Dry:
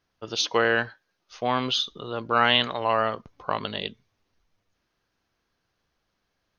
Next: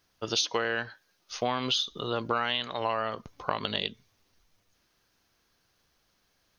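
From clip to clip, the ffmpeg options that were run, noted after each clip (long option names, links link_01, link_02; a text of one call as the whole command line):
ffmpeg -i in.wav -af "highshelf=frequency=4700:gain=11.5,acompressor=threshold=-27dB:ratio=10,volume=2.5dB" out.wav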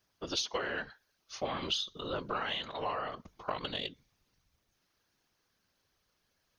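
ffmpeg -i in.wav -af "aeval=exprs='0.335*(cos(1*acos(clip(val(0)/0.335,-1,1)))-cos(1*PI/2))+0.00376*(cos(6*acos(clip(val(0)/0.335,-1,1)))-cos(6*PI/2))':channel_layout=same,afftfilt=real='hypot(re,im)*cos(2*PI*random(0))':imag='hypot(re,im)*sin(2*PI*random(1))':win_size=512:overlap=0.75" out.wav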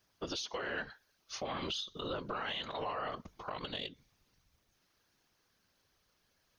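ffmpeg -i in.wav -af "alimiter=level_in=6.5dB:limit=-24dB:level=0:latency=1:release=168,volume=-6.5dB,volume=2dB" out.wav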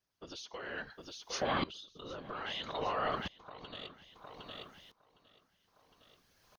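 ffmpeg -i in.wav -filter_complex "[0:a]asplit=2[link_01][link_02];[link_02]aecho=0:1:760|1520|2280|3040:0.282|0.113|0.0451|0.018[link_03];[link_01][link_03]amix=inputs=2:normalize=0,aeval=exprs='val(0)*pow(10,-20*if(lt(mod(-0.61*n/s,1),2*abs(-0.61)/1000),1-mod(-0.61*n/s,1)/(2*abs(-0.61)/1000),(mod(-0.61*n/s,1)-2*abs(-0.61)/1000)/(1-2*abs(-0.61)/1000))/20)':channel_layout=same,volume=7.5dB" out.wav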